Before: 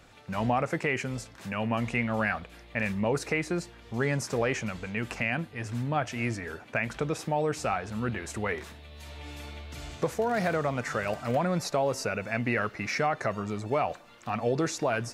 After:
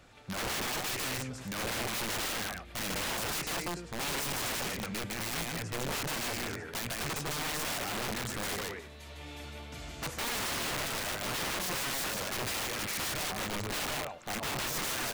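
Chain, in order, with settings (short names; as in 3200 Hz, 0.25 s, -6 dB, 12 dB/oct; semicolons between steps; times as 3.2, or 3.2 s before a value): loudspeakers at several distances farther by 53 m -4 dB, 89 m -12 dB; wrapped overs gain 27 dB; gain -2.5 dB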